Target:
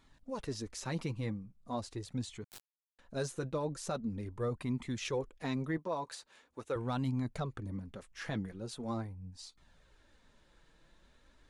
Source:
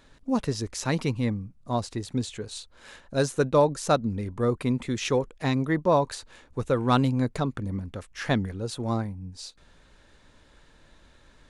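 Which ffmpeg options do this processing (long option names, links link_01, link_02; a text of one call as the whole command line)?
ffmpeg -i in.wav -filter_complex "[0:a]asettb=1/sr,asplit=3[link_01][link_02][link_03];[link_01]atrim=end=5.774[link_04];[link_02]atrim=start=5.77:end=6.76,asetpts=PTS-STARTPTS,afade=type=in:duration=0.004:curve=qsin,afade=type=out:start_time=0.986:duration=0.004:curve=qsin,highpass=frequency=430:poles=1[link_05];[link_03]atrim=start=6.756[link_06];[link_04][link_05]acrossfade=duration=0.004:curve1=hsin:curve2=qsin[link_07];[link_07][link_06]acrossfade=duration=0.004:curve1=qsin:curve2=hsin,alimiter=limit=-17.5dB:level=0:latency=1:release=20,flanger=delay=0.9:depth=5.3:regen=-33:speed=0.42:shape=sinusoidal,asettb=1/sr,asplit=3[link_08][link_09][link_10];[link_08]atrim=end=2.444[link_11];[link_09]atrim=start=2.44:end=2.99,asetpts=PTS-STARTPTS,afade=type=in:duration=0.004:curve=qsin,afade=type=out:start_time=0.546:duration=0.004:curve=qsin,acrusher=bits=3:dc=4:mix=0:aa=0.000001[link_12];[link_10]atrim=start=2.986[link_13];[link_11][link_12]acrossfade=duration=0.004:curve1=hsin:curve2=qsin[link_14];[link_14][link_13]acrossfade=duration=0.004:curve1=qsin:curve2=hsin,volume=-5.5dB" out.wav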